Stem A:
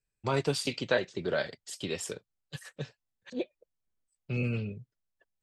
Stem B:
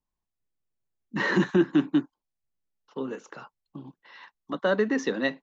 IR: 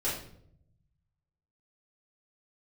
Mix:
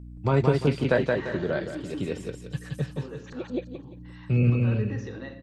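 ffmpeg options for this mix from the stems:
-filter_complex "[0:a]lowshelf=f=280:g=10,aeval=exprs='val(0)+0.00708*(sin(2*PI*60*n/s)+sin(2*PI*2*60*n/s)/2+sin(2*PI*3*60*n/s)/3+sin(2*PI*4*60*n/s)/4+sin(2*PI*5*60*n/s)/5)':c=same,volume=2.5dB,asplit=2[a][b];[b]volume=-3dB[c];[1:a]acompressor=threshold=-32dB:ratio=2,alimiter=limit=-24dB:level=0:latency=1:release=36,volume=-8dB,asplit=3[d][e][f];[e]volume=-8.5dB[g];[f]apad=whole_len=239299[h];[a][h]sidechaincompress=threshold=-53dB:ratio=8:attack=5.3:release=182[i];[2:a]atrim=start_sample=2205[j];[g][j]afir=irnorm=-1:irlink=0[k];[c]aecho=0:1:173|346|519|692:1|0.31|0.0961|0.0298[l];[i][d][k][l]amix=inputs=4:normalize=0,acrossover=split=2600[m][n];[n]acompressor=threshold=-50dB:ratio=4:attack=1:release=60[o];[m][o]amix=inputs=2:normalize=0"

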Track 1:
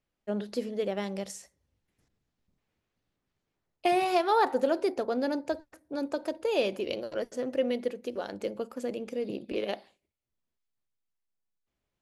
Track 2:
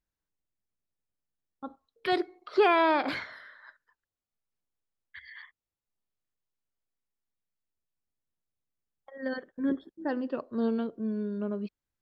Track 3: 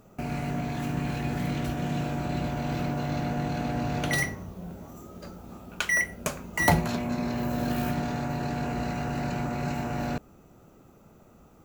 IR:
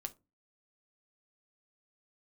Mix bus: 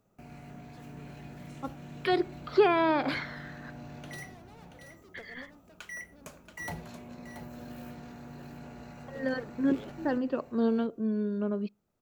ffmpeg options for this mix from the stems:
-filter_complex "[0:a]volume=33dB,asoftclip=hard,volume=-33dB,adelay=200,volume=-10dB[a];[1:a]volume=1.5dB,asplit=3[b][c][d];[c]volume=-19.5dB[e];[2:a]asoftclip=type=tanh:threshold=-13dB,volume=-16.5dB,asplit=2[f][g];[g]volume=-9dB[h];[d]apad=whole_len=538857[i];[a][i]sidechaingate=range=-12dB:threshold=-45dB:ratio=16:detection=peak[j];[3:a]atrim=start_sample=2205[k];[e][k]afir=irnorm=-1:irlink=0[l];[h]aecho=0:1:680:1[m];[j][b][f][l][m]amix=inputs=5:normalize=0,acrossover=split=490[n][o];[o]acompressor=threshold=-30dB:ratio=2[p];[n][p]amix=inputs=2:normalize=0"

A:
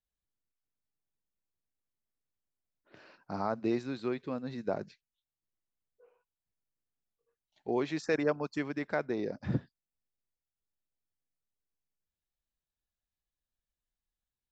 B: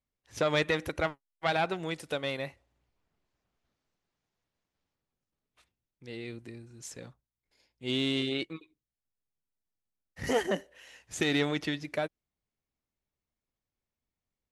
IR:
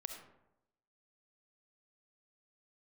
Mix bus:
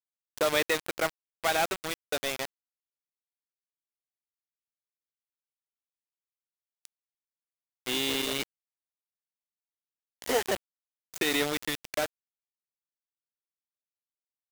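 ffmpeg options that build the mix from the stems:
-filter_complex "[0:a]asoftclip=type=tanh:threshold=-25dB,volume=-9dB[a];[1:a]highpass=320,volume=1.5dB[b];[a][b]amix=inputs=2:normalize=0,acrusher=bits=4:mix=0:aa=0.000001"

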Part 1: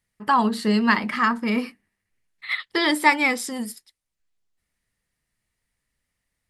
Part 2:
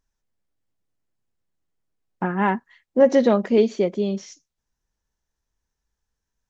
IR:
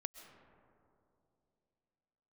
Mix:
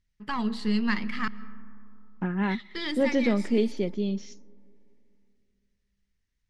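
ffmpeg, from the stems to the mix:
-filter_complex "[0:a]aeval=exprs='if(lt(val(0),0),0.708*val(0),val(0))':c=same,volume=-3dB,asplit=3[a][b][c];[a]atrim=end=1.28,asetpts=PTS-STARTPTS,afade=t=out:st=1.276:d=0.004:c=hsin[d];[b]atrim=start=1.28:end=1.86,asetpts=PTS-STARTPTS,volume=0[e];[c]atrim=start=1.86,asetpts=PTS-STARTPTS,afade=t=in:d=0.004:c=hsin[f];[d][e][f]concat=n=3:v=0:a=1,asplit=2[g][h];[h]volume=-3.5dB[i];[1:a]volume=0.5dB,asplit=3[j][k][l];[k]volume=-19.5dB[m];[l]apad=whole_len=286347[n];[g][n]sidechaincompress=threshold=-23dB:ratio=8:attack=11:release=939[o];[2:a]atrim=start_sample=2205[p];[i][m]amix=inputs=2:normalize=0[q];[q][p]afir=irnorm=-1:irlink=0[r];[o][j][r]amix=inputs=3:normalize=0,lowpass=4.4k,equalizer=f=790:t=o:w=2.6:g=-14.5"

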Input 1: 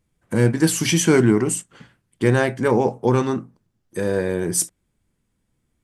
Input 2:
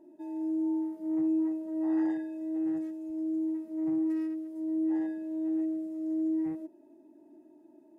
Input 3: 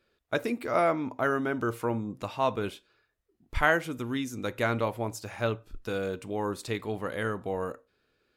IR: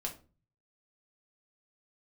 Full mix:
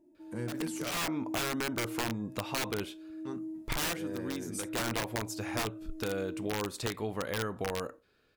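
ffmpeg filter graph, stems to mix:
-filter_complex "[0:a]volume=-18.5dB,asplit=3[a][b][c];[a]atrim=end=0.91,asetpts=PTS-STARTPTS,afade=t=out:st=0.906:d=0.004:c=hsin[d];[b]atrim=start=0.91:end=3.25,asetpts=PTS-STARTPTS,volume=0[e];[c]atrim=start=3.25,asetpts=PTS-STARTPTS,afade=t=in:d=0.004:c=hsin[f];[d][e][f]concat=n=3:v=0:a=1,asplit=2[g][h];[1:a]bass=f=250:g=10,treble=f=4k:g=8,volume=-11.5dB[i];[2:a]aeval=exprs='(mod(12.6*val(0)+1,2)-1)/12.6':c=same,adelay=150,volume=2.5dB[j];[h]apad=whole_len=375599[k];[j][k]sidechaincompress=threshold=-45dB:ratio=6:attack=21:release=313[l];[g][i][l]amix=inputs=3:normalize=0,acompressor=threshold=-32dB:ratio=3"

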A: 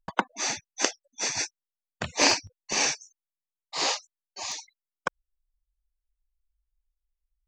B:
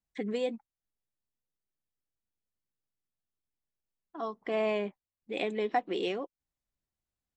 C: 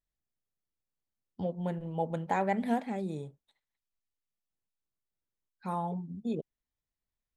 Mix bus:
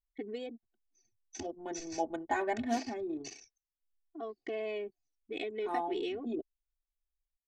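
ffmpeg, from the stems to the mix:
-filter_complex "[0:a]highpass=110,acrossover=split=140[a][b];[b]acompressor=threshold=-35dB:ratio=10[c];[a][c]amix=inputs=2:normalize=0,adelay=550,volume=-9.5dB[d];[1:a]volume=-3dB,asplit=2[e][f];[2:a]aecho=1:1:3.3:0.69,volume=-4.5dB[g];[f]apad=whole_len=354085[h];[d][h]sidechaincompress=threshold=-49dB:ratio=4:attack=11:release=686[i];[i][e]amix=inputs=2:normalize=0,equalizer=f=1k:w=1.7:g=-14.5,acompressor=threshold=-38dB:ratio=2.5,volume=0dB[j];[g][j]amix=inputs=2:normalize=0,anlmdn=0.0398,aecho=1:1:2.7:0.96"

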